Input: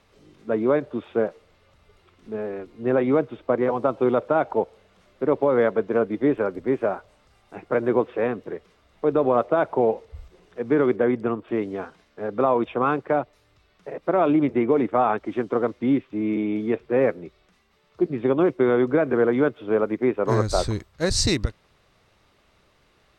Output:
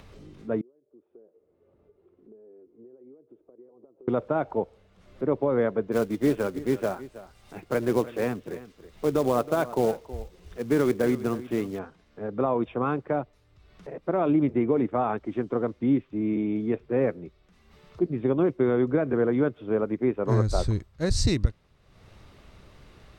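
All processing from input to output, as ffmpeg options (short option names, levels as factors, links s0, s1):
-filter_complex "[0:a]asettb=1/sr,asplit=3[s0][s1][s2];[s0]atrim=end=0.614[s3];[s1]atrim=start=0.61:end=4.08,asetpts=PTS-STARTPTS,afade=t=in:d=0.004:c=qsin,afade=t=out:st=3.466:d=0.004:c=qsin,aderivative,acompressor=threshold=0.00126:ratio=6:attack=3.2:release=140:knee=1:detection=peak,lowpass=f=390:t=q:w=3[s4];[s2]atrim=start=4.076[s5];[s3][s4]acrossfade=d=0.004:c1=hsin:c2=qsin[s6];[s6][s5]acrossfade=d=0.004:c1=qsin:c2=hsin,asettb=1/sr,asplit=3[s7][s8][s9];[s7]atrim=end=5.924[s10];[s8]atrim=start=5.92:end=11.79,asetpts=PTS-STARTPTS,afade=t=in:d=0.004:c=qsin,afade=t=out:st=5.866:d=0.004:c=qsin,highshelf=f=2400:g=10.5,aecho=1:1:321:0.158,atrim=end_sample=258867,acrusher=bits=4:mode=log:mix=0:aa=0.000001[s11];[s9]atrim=start=11.786[s12];[s10][s11]acrossfade=d=0.004:c1=hsin:c2=qsin[s13];[s13][s12]acrossfade=d=0.004:c1=qsin:c2=hsin,acompressor=mode=upward:threshold=0.0141:ratio=2.5,lowshelf=f=270:g=11,volume=0.422"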